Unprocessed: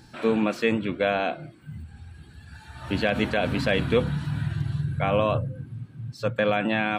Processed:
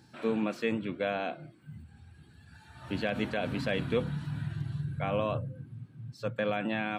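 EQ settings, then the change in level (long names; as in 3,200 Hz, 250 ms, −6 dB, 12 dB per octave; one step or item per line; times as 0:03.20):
high-pass filter 100 Hz
low-shelf EQ 330 Hz +3 dB
−8.5 dB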